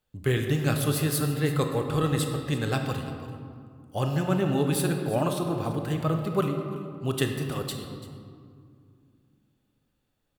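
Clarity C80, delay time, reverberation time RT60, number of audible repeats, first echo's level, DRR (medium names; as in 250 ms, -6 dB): 6.0 dB, 338 ms, 2.2 s, 1, -16.5 dB, 3.5 dB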